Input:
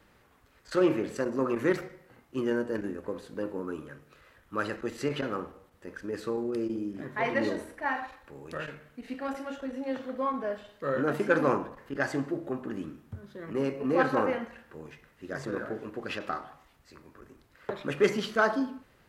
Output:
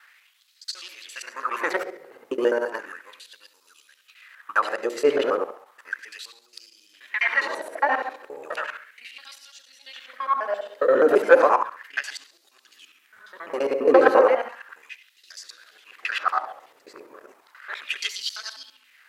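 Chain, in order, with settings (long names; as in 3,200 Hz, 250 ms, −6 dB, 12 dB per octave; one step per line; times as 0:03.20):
reversed piece by piece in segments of 68 ms
hum removal 50.14 Hz, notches 12
auto-filter high-pass sine 0.34 Hz 430–4,600 Hz
level +7 dB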